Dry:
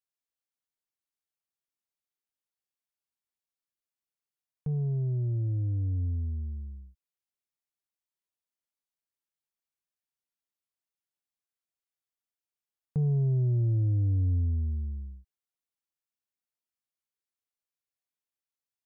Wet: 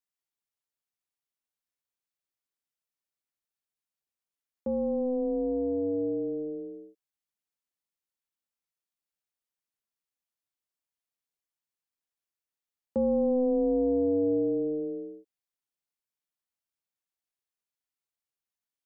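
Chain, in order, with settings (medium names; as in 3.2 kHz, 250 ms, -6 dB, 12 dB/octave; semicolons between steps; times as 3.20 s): ring modulator 380 Hz; dynamic bell 610 Hz, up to +3 dB, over -46 dBFS; trim +2 dB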